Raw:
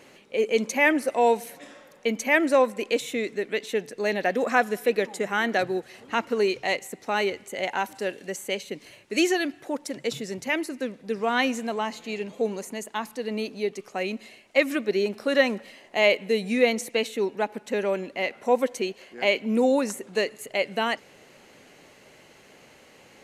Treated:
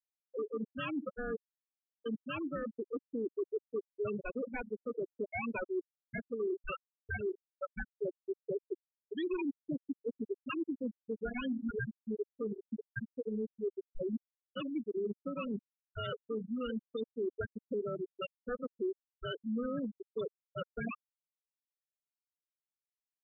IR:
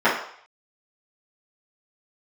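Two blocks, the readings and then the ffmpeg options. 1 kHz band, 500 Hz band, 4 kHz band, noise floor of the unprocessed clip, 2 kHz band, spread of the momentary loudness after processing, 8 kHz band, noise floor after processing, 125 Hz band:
-19.0 dB, -13.5 dB, -19.5 dB, -54 dBFS, -18.5 dB, 6 LU, under -40 dB, under -85 dBFS, -4.5 dB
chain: -filter_complex "[0:a]agate=range=-33dB:threshold=-41dB:ratio=3:detection=peak,highpass=160,aecho=1:1:72:0.178,acrossover=split=540[a][b];[a]crystalizer=i=1:c=0[c];[b]aeval=exprs='val(0)*sin(2*PI*740*n/s)':c=same[d];[c][d]amix=inputs=2:normalize=0,afftfilt=real='re*gte(hypot(re,im),0.178)':imag='im*gte(hypot(re,im),0.178)':win_size=1024:overlap=0.75,areverse,acompressor=threshold=-33dB:ratio=8,areverse,alimiter=level_in=8.5dB:limit=-24dB:level=0:latency=1:release=292,volume=-8.5dB,volume=4dB"

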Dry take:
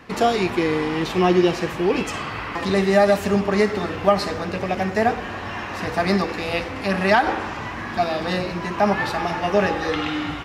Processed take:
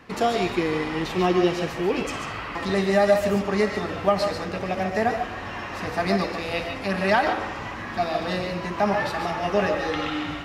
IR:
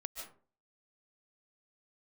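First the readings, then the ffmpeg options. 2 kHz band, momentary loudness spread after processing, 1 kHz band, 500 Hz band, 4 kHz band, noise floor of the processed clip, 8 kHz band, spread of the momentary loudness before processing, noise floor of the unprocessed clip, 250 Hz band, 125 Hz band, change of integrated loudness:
-3.0 dB, 9 LU, -3.0 dB, -2.5 dB, -2.5 dB, -34 dBFS, -3.0 dB, 10 LU, -31 dBFS, -3.5 dB, -3.5 dB, -3.0 dB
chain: -filter_complex "[1:a]atrim=start_sample=2205,atrim=end_sample=6615[a];[0:a][a]afir=irnorm=-1:irlink=0"

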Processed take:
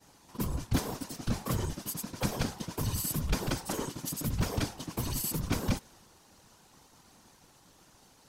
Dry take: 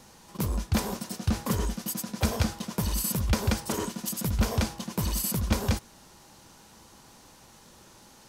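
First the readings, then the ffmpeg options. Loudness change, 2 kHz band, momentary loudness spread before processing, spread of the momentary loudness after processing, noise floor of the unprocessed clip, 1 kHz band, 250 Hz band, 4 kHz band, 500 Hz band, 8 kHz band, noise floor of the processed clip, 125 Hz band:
-4.5 dB, -4.0 dB, 5 LU, 5 LU, -54 dBFS, -4.0 dB, -4.5 dB, -4.0 dB, -4.0 dB, -4.0 dB, -61 dBFS, -4.5 dB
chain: -af "agate=range=-33dB:threshold=-50dB:ratio=3:detection=peak,afftfilt=real='hypot(re,im)*cos(2*PI*random(0))':imag='hypot(re,im)*sin(2*PI*random(1))':win_size=512:overlap=0.75,volume=2dB"

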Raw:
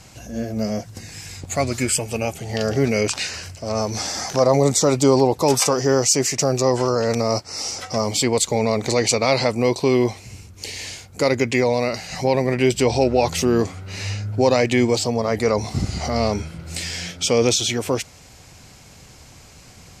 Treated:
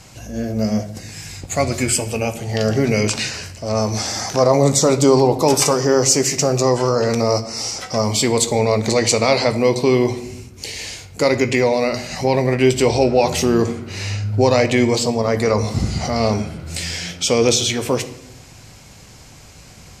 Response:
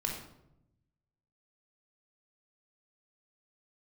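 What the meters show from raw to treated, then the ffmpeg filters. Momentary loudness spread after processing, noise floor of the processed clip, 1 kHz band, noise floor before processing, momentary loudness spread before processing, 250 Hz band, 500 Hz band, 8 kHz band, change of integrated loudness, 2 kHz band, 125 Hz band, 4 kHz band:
12 LU, -42 dBFS, +2.5 dB, -46 dBFS, 12 LU, +2.5 dB, +2.5 dB, +2.5 dB, +2.5 dB, +2.5 dB, +3.5 dB, +2.5 dB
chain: -filter_complex "[0:a]asplit=2[a][b];[1:a]atrim=start_sample=2205,adelay=18[c];[b][c]afir=irnorm=-1:irlink=0,volume=-12.5dB[d];[a][d]amix=inputs=2:normalize=0,volume=2dB"

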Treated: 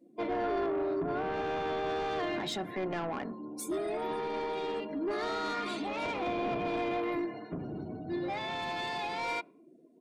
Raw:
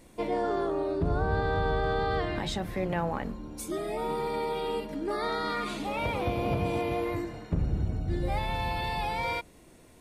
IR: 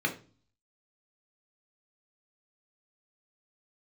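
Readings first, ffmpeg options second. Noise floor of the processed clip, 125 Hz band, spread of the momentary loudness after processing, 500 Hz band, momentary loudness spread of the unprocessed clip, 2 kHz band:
-58 dBFS, -14.0 dB, 6 LU, -2.5 dB, 5 LU, -3.0 dB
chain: -af "highpass=f=160:w=0.5412,highpass=f=160:w=1.3066,afftdn=nr=29:nf=-50,asoftclip=type=tanh:threshold=-29dB,aecho=1:1:2.9:0.41"

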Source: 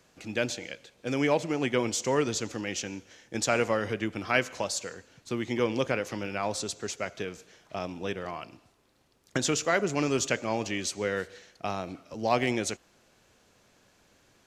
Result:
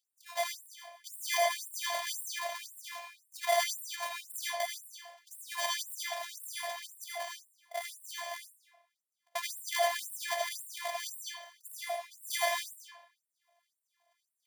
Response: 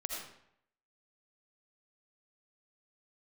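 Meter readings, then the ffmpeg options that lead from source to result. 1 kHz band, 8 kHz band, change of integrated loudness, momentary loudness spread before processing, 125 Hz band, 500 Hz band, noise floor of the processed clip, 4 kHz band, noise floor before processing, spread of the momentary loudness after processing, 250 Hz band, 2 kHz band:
-2.5 dB, -3.5 dB, -5.5 dB, 13 LU, under -40 dB, -8.5 dB, under -85 dBFS, -1.0 dB, -64 dBFS, 16 LU, under -40 dB, -4.5 dB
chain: -filter_complex "[0:a]acrusher=samples=33:mix=1:aa=0.000001,agate=range=-7dB:threshold=-57dB:ratio=16:detection=peak[a];[1:a]atrim=start_sample=2205[b];[a][b]afir=irnorm=-1:irlink=0,afftfilt=real='hypot(re,im)*cos(PI*b)':imag='0':win_size=512:overlap=0.75,afftfilt=real='re*gte(b*sr/1024,500*pow(7800/500,0.5+0.5*sin(2*PI*1.9*pts/sr)))':imag='im*gte(b*sr/1024,500*pow(7800/500,0.5+0.5*sin(2*PI*1.9*pts/sr)))':win_size=1024:overlap=0.75,volume=4dB"

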